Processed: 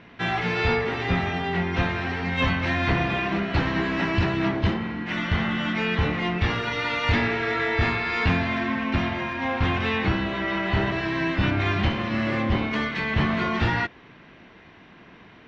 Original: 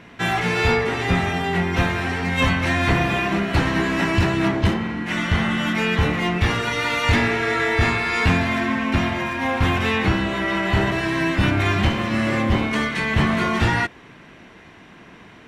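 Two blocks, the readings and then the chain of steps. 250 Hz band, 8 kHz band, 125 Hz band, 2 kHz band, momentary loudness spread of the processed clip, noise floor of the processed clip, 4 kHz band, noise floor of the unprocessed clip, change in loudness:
−4.0 dB, below −10 dB, −4.0 dB, −4.0 dB, 3 LU, −50 dBFS, −4.5 dB, −46 dBFS, −4.0 dB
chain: low-pass filter 5,000 Hz 24 dB per octave
level −4 dB

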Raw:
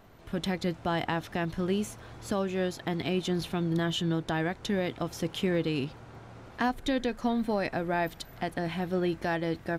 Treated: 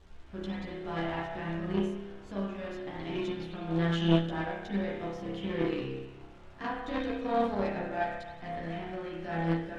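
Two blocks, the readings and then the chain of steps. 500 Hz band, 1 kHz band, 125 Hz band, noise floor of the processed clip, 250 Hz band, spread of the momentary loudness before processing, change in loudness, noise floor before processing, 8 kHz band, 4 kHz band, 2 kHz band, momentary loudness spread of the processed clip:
−2.5 dB, −2.0 dB, −1.5 dB, −49 dBFS, −2.5 dB, 6 LU, −2.5 dB, −50 dBFS, below −15 dB, −5.5 dB, −4.0 dB, 12 LU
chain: surface crackle 460 per second −38 dBFS
spring reverb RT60 1.3 s, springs 30 ms, chirp 70 ms, DRR −5.5 dB
harmonic generator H 3 −12 dB, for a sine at −6.5 dBFS
background noise brown −55 dBFS
multi-voice chorus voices 6, 0.39 Hz, delay 13 ms, depth 2.9 ms
high-frequency loss of the air 84 metres
level +2 dB

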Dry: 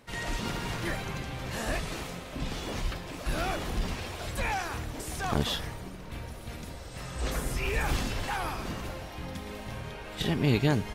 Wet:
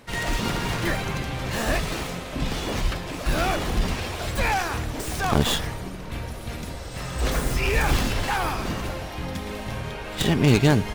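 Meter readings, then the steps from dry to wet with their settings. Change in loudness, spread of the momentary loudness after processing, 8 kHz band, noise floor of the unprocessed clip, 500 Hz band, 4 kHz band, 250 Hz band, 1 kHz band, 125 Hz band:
+7.5 dB, 12 LU, +7.5 dB, −43 dBFS, +7.5 dB, +7.0 dB, +7.5 dB, +7.5 dB, +7.5 dB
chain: stylus tracing distortion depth 0.1 ms
level +7.5 dB

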